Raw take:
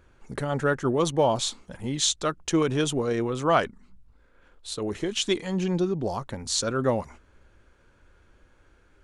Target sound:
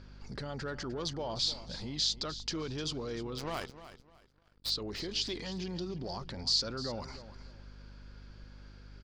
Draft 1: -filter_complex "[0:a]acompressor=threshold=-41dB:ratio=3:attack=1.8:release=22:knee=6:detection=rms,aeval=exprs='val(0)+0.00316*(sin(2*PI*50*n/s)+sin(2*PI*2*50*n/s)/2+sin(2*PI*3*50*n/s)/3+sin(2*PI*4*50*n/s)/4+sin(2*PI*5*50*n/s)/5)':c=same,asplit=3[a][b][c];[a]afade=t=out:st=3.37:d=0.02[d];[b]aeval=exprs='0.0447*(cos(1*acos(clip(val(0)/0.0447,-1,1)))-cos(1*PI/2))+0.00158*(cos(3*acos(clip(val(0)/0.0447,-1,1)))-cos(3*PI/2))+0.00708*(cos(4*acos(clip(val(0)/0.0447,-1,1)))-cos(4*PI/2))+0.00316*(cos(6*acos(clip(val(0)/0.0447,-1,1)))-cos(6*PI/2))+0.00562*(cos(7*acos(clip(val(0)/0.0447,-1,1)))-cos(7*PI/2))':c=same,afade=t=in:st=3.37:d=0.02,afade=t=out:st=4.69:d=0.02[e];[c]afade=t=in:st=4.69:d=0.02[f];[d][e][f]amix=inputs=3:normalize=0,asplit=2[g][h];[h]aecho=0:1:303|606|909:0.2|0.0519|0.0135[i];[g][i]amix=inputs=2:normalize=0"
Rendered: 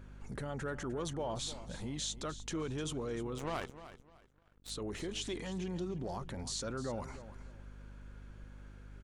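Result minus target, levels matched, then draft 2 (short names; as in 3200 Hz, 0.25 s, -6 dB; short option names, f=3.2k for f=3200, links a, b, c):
4000 Hz band -6.0 dB
-filter_complex "[0:a]acompressor=threshold=-41dB:ratio=3:attack=1.8:release=22:knee=6:detection=rms,lowpass=f=4.8k:t=q:w=9.9,aeval=exprs='val(0)+0.00316*(sin(2*PI*50*n/s)+sin(2*PI*2*50*n/s)/2+sin(2*PI*3*50*n/s)/3+sin(2*PI*4*50*n/s)/4+sin(2*PI*5*50*n/s)/5)':c=same,asplit=3[a][b][c];[a]afade=t=out:st=3.37:d=0.02[d];[b]aeval=exprs='0.0447*(cos(1*acos(clip(val(0)/0.0447,-1,1)))-cos(1*PI/2))+0.00158*(cos(3*acos(clip(val(0)/0.0447,-1,1)))-cos(3*PI/2))+0.00708*(cos(4*acos(clip(val(0)/0.0447,-1,1)))-cos(4*PI/2))+0.00316*(cos(6*acos(clip(val(0)/0.0447,-1,1)))-cos(6*PI/2))+0.00562*(cos(7*acos(clip(val(0)/0.0447,-1,1)))-cos(7*PI/2))':c=same,afade=t=in:st=3.37:d=0.02,afade=t=out:st=4.69:d=0.02[e];[c]afade=t=in:st=4.69:d=0.02[f];[d][e][f]amix=inputs=3:normalize=0,asplit=2[g][h];[h]aecho=0:1:303|606|909:0.2|0.0519|0.0135[i];[g][i]amix=inputs=2:normalize=0"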